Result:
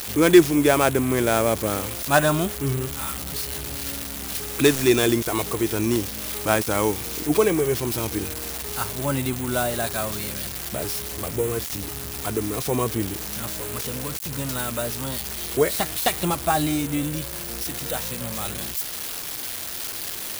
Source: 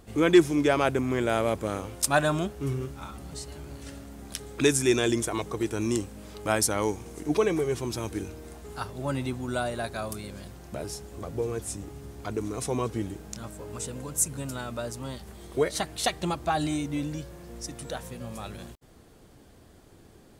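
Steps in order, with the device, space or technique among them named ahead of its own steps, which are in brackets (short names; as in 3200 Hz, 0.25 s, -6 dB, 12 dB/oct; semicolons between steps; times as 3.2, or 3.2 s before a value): budget class-D amplifier (switching dead time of 0.086 ms; switching spikes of -18.5 dBFS); gain +5 dB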